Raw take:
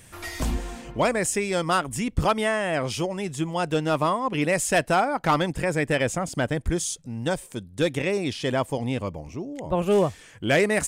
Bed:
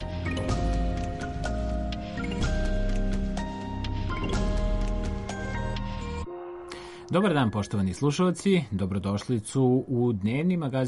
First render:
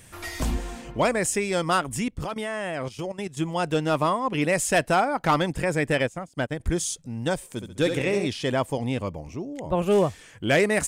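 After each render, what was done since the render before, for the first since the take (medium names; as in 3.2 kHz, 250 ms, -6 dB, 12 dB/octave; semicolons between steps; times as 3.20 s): 2.08–3.37 s: level held to a coarse grid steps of 15 dB; 6.03–6.60 s: upward expansion 2.5:1, over -36 dBFS; 7.50–8.27 s: flutter echo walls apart 11.8 m, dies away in 0.56 s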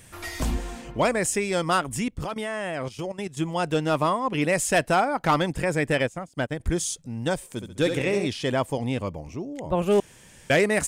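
10.00–10.50 s: room tone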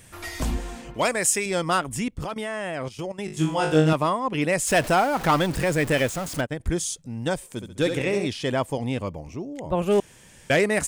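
0.94–1.46 s: tilt EQ +2 dB/octave; 3.26–3.93 s: flutter echo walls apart 3.3 m, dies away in 0.44 s; 4.67–6.41 s: jump at every zero crossing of -28.5 dBFS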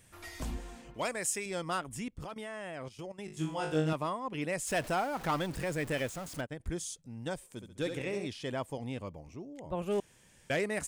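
trim -11.5 dB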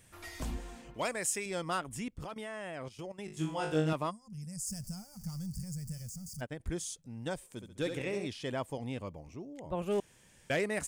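4.10–6.42 s: time-frequency box 220–4500 Hz -28 dB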